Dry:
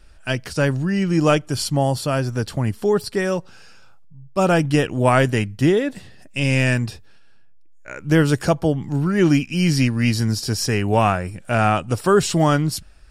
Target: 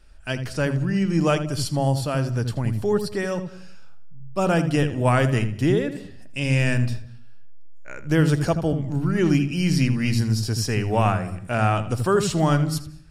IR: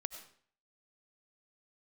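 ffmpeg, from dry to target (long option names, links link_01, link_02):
-filter_complex "[0:a]asplit=2[link_01][link_02];[link_02]bass=frequency=250:gain=14,treble=frequency=4000:gain=3[link_03];[1:a]atrim=start_sample=2205,highshelf=frequency=5500:gain=-11.5,adelay=81[link_04];[link_03][link_04]afir=irnorm=-1:irlink=0,volume=-10dB[link_05];[link_01][link_05]amix=inputs=2:normalize=0,volume=-4.5dB"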